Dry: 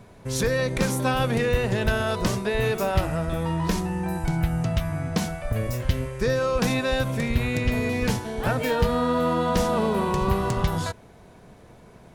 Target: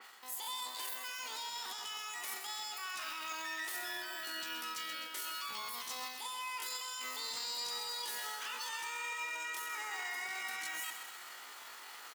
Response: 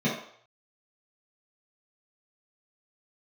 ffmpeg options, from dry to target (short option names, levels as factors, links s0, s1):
-af "highpass=700,equalizer=f=10000:t=o:w=2.8:g=3.5,areverse,acompressor=threshold=0.00708:ratio=4,areverse,alimiter=level_in=5.01:limit=0.0631:level=0:latency=1:release=17,volume=0.2,acontrast=64,acrusher=bits=7:mode=log:mix=0:aa=0.000001,asetrate=85689,aresample=44100,atempo=0.514651,aecho=1:1:129|258|387|516|645|774|903:0.398|0.231|0.134|0.0777|0.0451|0.0261|0.0152,adynamicequalizer=threshold=0.00224:dfrequency=3600:dqfactor=0.7:tfrequency=3600:tqfactor=0.7:attack=5:release=100:ratio=0.375:range=1.5:mode=boostabove:tftype=highshelf,volume=0.794"